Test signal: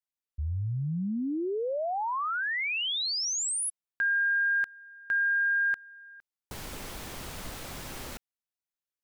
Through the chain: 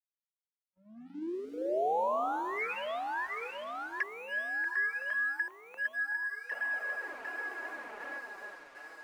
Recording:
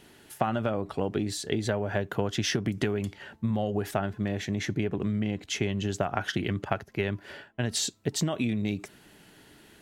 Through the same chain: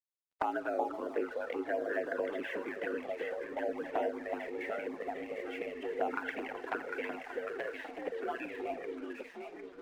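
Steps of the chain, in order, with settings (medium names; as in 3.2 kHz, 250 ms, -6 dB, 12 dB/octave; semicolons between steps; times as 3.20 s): on a send: echo whose repeats swap between lows and highs 376 ms, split 1.1 kHz, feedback 78%, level -3 dB; on the sum: spring tank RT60 1.7 s, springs 40 ms, chirp 35 ms, DRR 12 dB; in parallel at +2 dB: peak limiter -19 dBFS; on the sum: mistuned SSB +60 Hz 210–2700 Hz; three-band isolator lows -12 dB, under 440 Hz, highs -13 dB, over 2 kHz; spectral noise reduction 8 dB; crossover distortion -51 dBFS; touch-sensitive flanger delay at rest 10.7 ms, full sweep at -21 dBFS; trim -4 dB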